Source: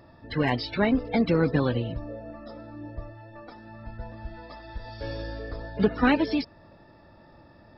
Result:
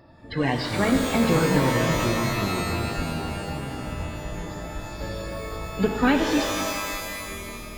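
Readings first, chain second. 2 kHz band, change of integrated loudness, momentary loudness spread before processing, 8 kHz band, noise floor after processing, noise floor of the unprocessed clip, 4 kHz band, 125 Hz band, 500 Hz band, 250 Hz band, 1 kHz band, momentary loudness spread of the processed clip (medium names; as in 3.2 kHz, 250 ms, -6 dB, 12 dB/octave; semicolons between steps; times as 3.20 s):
+5.0 dB, +1.0 dB, 20 LU, no reading, -37 dBFS, -54 dBFS, +7.5 dB, +4.5 dB, +3.0 dB, +2.5 dB, +6.0 dB, 13 LU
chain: ever faster or slower copies 198 ms, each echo -6 st, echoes 3, each echo -6 dB; pitch-shifted reverb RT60 2.1 s, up +12 st, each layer -2 dB, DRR 4.5 dB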